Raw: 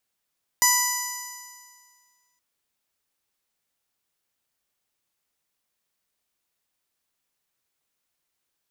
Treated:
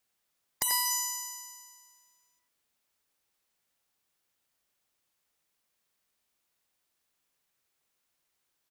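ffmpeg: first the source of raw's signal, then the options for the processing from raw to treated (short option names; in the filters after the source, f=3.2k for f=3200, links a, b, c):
-f lavfi -i "aevalsrc='0.0794*pow(10,-3*t/1.85)*sin(2*PI*984.4*t)+0.0708*pow(10,-3*t/1.85)*sin(2*PI*1971.19*t)+0.0112*pow(10,-3*t/1.85)*sin(2*PI*2962.74*t)+0.01*pow(10,-3*t/1.85)*sin(2*PI*3961.42*t)+0.0596*pow(10,-3*t/1.85)*sin(2*PI*4969.57*t)+0.0891*pow(10,-3*t/1.85)*sin(2*PI*5989.46*t)+0.106*pow(10,-3*t/1.85)*sin(2*PI*7023.36*t)+0.0237*pow(10,-3*t/1.85)*sin(2*PI*8073.46*t)+0.0282*pow(10,-3*t/1.85)*sin(2*PI*9141.91*t)+0.02*pow(10,-3*t/1.85)*sin(2*PI*10230.76*t)+0.00891*pow(10,-3*t/1.85)*sin(2*PI*11342.03*t)+0.0447*pow(10,-3*t/1.85)*sin(2*PI*12477.65*t)+0.0224*pow(10,-3*t/1.85)*sin(2*PI*13639.48*t)':d=1.77:s=44100"
-filter_complex "[0:a]asplit=2[a][b];[b]adelay=90,highpass=300,lowpass=3.4k,asoftclip=type=hard:threshold=-17dB,volume=-6dB[c];[a][c]amix=inputs=2:normalize=0,afftfilt=real='re*lt(hypot(re,im),0.316)':imag='im*lt(hypot(re,im),0.316)':win_size=1024:overlap=0.75"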